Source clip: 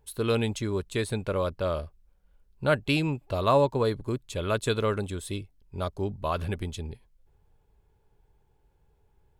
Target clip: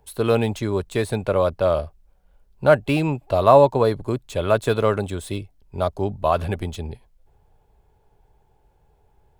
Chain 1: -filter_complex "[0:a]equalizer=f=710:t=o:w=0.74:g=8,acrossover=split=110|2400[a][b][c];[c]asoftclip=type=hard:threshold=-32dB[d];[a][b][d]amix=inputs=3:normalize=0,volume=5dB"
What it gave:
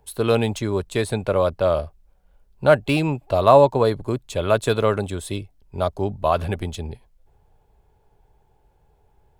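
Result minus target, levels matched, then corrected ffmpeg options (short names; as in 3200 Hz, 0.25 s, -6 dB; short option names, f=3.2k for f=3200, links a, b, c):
hard clip: distortion -5 dB
-filter_complex "[0:a]equalizer=f=710:t=o:w=0.74:g=8,acrossover=split=110|2400[a][b][c];[c]asoftclip=type=hard:threshold=-40dB[d];[a][b][d]amix=inputs=3:normalize=0,volume=5dB"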